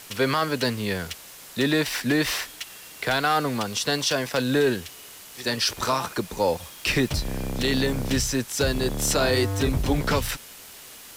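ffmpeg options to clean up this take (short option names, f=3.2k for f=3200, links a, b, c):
-af "adeclick=t=4,afwtdn=0.0071"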